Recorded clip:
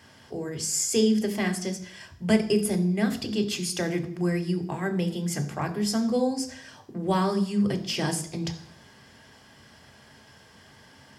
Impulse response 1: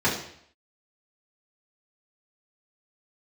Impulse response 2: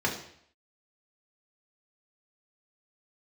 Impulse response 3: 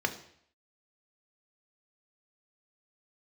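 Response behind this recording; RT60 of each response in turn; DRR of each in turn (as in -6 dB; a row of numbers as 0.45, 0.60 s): 3; 0.65, 0.65, 0.65 s; -8.5, -2.5, 5.5 dB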